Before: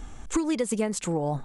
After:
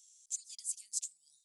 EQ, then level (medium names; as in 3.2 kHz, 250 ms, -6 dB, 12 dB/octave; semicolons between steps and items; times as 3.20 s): inverse Chebyshev high-pass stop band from 1.2 kHz, stop band 70 dB; treble shelf 9.9 kHz -6 dB; 0.0 dB